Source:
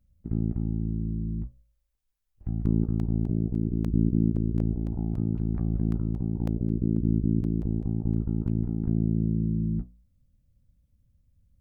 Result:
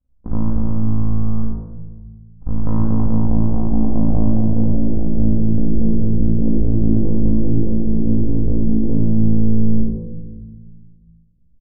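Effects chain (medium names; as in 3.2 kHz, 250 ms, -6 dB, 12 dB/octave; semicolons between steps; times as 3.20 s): partial rectifier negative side -12 dB; bass shelf 130 Hz +4 dB; waveshaping leveller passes 2; low-pass sweep 1.1 kHz -> 440 Hz, 2.68–5.65 s; doubling 32 ms -12.5 dB; simulated room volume 960 m³, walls mixed, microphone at 2 m; trim -1.5 dB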